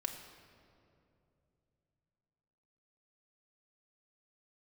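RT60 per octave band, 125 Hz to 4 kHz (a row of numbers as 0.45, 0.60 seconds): 4.1, 3.5, 3.1, 2.4, 1.9, 1.5 seconds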